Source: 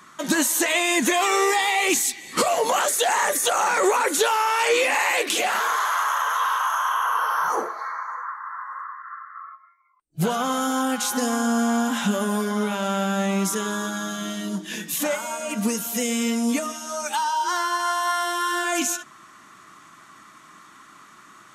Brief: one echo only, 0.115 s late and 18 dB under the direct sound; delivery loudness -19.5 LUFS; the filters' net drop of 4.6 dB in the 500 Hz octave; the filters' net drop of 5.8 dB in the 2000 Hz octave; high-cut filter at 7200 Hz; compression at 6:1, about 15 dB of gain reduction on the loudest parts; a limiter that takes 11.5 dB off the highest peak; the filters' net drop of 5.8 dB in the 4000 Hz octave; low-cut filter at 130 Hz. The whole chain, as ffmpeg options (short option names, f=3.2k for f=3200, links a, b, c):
-af "highpass=130,lowpass=7.2k,equalizer=f=500:t=o:g=-5.5,equalizer=f=2k:t=o:g=-6,equalizer=f=4k:t=o:g=-5,acompressor=threshold=-37dB:ratio=6,alimiter=level_in=11dB:limit=-24dB:level=0:latency=1,volume=-11dB,aecho=1:1:115:0.126,volume=23.5dB"